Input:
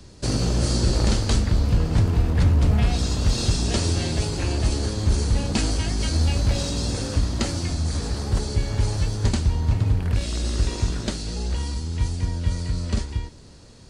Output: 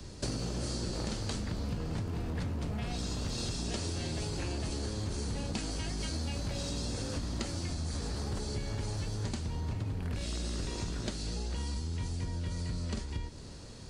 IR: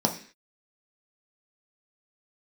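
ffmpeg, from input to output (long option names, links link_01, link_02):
-filter_complex "[0:a]acrossover=split=120|4900[link_01][link_02][link_03];[link_01]asoftclip=type=hard:threshold=-27dB[link_04];[link_04][link_02][link_03]amix=inputs=3:normalize=0,acompressor=threshold=-33dB:ratio=6"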